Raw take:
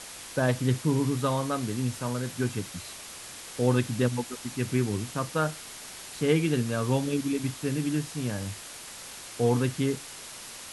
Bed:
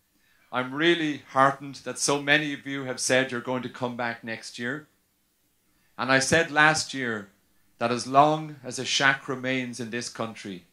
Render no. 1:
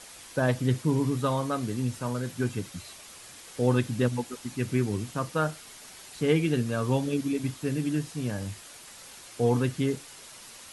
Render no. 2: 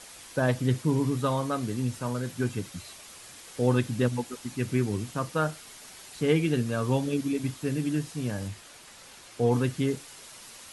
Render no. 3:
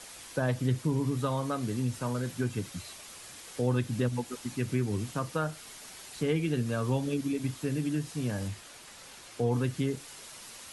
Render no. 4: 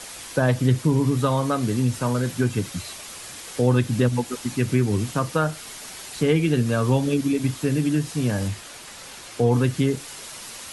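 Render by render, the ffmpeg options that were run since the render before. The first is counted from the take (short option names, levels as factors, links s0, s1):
-af "afftdn=nr=6:nf=-43"
-filter_complex "[0:a]asettb=1/sr,asplit=3[s0][s1][s2];[s0]atrim=end=8.484[s3];[s1]atrim=start=8.48:end=9.52,asetpts=PTS-STARTPTS,afade=t=in:d=0.004:c=qsin,afade=t=out:st=1.036:d=0.004:c=qsin,highshelf=f=6800:g=-6.5[s4];[s2]atrim=start=9.516[s5];[s3][s4]acrossfade=d=0.004:c1=hsin:c2=qsin[s6];[s6][s5]acrossfade=d=0.004:c1=qsin:c2=hsin"
-filter_complex "[0:a]acrossover=split=120[s0][s1];[s1]acompressor=threshold=0.0316:ratio=2[s2];[s0][s2]amix=inputs=2:normalize=0"
-af "volume=2.82"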